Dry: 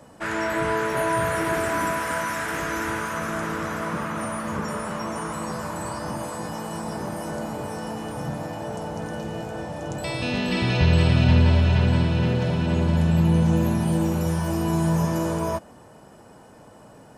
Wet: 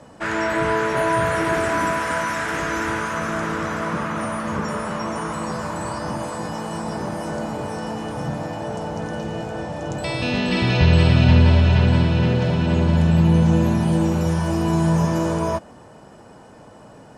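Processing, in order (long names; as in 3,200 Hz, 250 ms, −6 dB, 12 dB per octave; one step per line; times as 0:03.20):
low-pass filter 7,900 Hz 12 dB per octave
level +3.5 dB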